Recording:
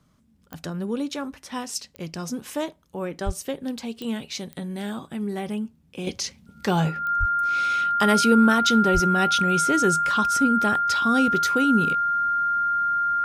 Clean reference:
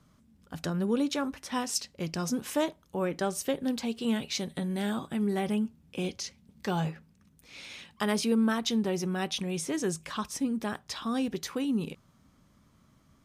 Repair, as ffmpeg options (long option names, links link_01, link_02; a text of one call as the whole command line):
ffmpeg -i in.wav -filter_complex "[0:a]adeclick=threshold=4,bandreject=frequency=1400:width=30,asplit=3[link_01][link_02][link_03];[link_01]afade=type=out:start_time=3.25:duration=0.02[link_04];[link_02]highpass=frequency=140:width=0.5412,highpass=frequency=140:width=1.3066,afade=type=in:start_time=3.25:duration=0.02,afade=type=out:start_time=3.37:duration=0.02[link_05];[link_03]afade=type=in:start_time=3.37:duration=0.02[link_06];[link_04][link_05][link_06]amix=inputs=3:normalize=0,asplit=3[link_07][link_08][link_09];[link_07]afade=type=out:start_time=7.19:duration=0.02[link_10];[link_08]highpass=frequency=140:width=0.5412,highpass=frequency=140:width=1.3066,afade=type=in:start_time=7.19:duration=0.02,afade=type=out:start_time=7.31:duration=0.02[link_11];[link_09]afade=type=in:start_time=7.31:duration=0.02[link_12];[link_10][link_11][link_12]amix=inputs=3:normalize=0,asplit=3[link_13][link_14][link_15];[link_13]afade=type=out:start_time=8.93:duration=0.02[link_16];[link_14]highpass=frequency=140:width=0.5412,highpass=frequency=140:width=1.3066,afade=type=in:start_time=8.93:duration=0.02,afade=type=out:start_time=9.05:duration=0.02[link_17];[link_15]afade=type=in:start_time=9.05:duration=0.02[link_18];[link_16][link_17][link_18]amix=inputs=3:normalize=0,asetnsamples=nb_out_samples=441:pad=0,asendcmd='6.07 volume volume -8dB',volume=0dB" out.wav